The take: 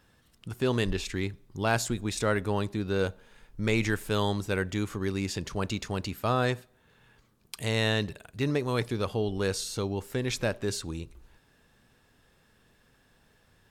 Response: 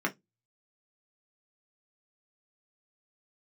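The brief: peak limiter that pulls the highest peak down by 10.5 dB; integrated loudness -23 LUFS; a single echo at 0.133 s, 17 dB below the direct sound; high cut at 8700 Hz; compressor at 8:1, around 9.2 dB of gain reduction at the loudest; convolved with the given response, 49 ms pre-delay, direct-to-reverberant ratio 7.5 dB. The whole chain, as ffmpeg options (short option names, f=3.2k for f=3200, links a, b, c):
-filter_complex "[0:a]lowpass=8.7k,acompressor=threshold=-31dB:ratio=8,alimiter=level_in=4.5dB:limit=-24dB:level=0:latency=1,volume=-4.5dB,aecho=1:1:133:0.141,asplit=2[a][b];[1:a]atrim=start_sample=2205,adelay=49[c];[b][c]afir=irnorm=-1:irlink=0,volume=-15.5dB[d];[a][d]amix=inputs=2:normalize=0,volume=15.5dB"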